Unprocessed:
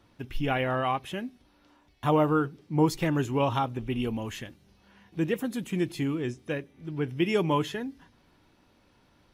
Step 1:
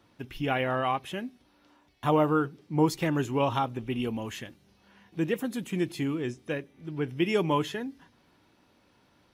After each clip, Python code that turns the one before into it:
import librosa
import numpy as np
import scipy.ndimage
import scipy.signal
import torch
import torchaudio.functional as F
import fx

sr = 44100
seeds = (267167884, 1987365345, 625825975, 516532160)

y = fx.highpass(x, sr, hz=110.0, slope=6)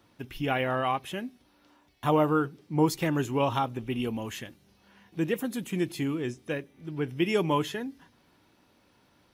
y = fx.high_shelf(x, sr, hz=9800.0, db=6.5)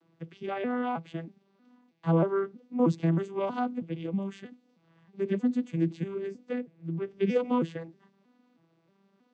y = fx.vocoder_arp(x, sr, chord='minor triad', root=52, every_ms=317)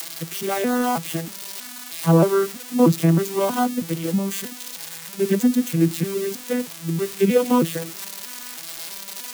y = x + 0.5 * 10.0 ** (-27.0 / 20.0) * np.diff(np.sign(x), prepend=np.sign(x[:1]))
y = y * librosa.db_to_amplitude(9.0)